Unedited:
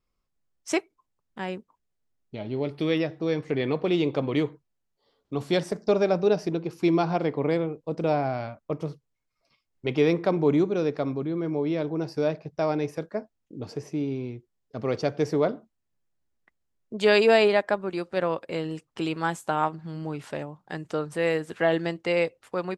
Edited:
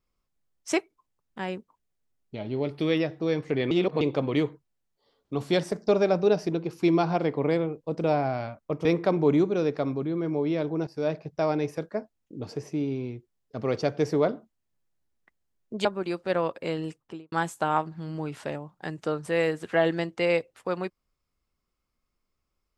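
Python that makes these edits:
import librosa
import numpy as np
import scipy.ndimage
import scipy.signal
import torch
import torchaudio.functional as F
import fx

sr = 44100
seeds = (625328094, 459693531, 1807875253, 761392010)

y = fx.studio_fade_out(x, sr, start_s=18.76, length_s=0.43)
y = fx.edit(y, sr, fx.reverse_span(start_s=3.71, length_s=0.3),
    fx.cut(start_s=8.85, length_s=1.2),
    fx.fade_in_from(start_s=12.07, length_s=0.26, floor_db=-13.5),
    fx.cut(start_s=17.05, length_s=0.67), tone=tone)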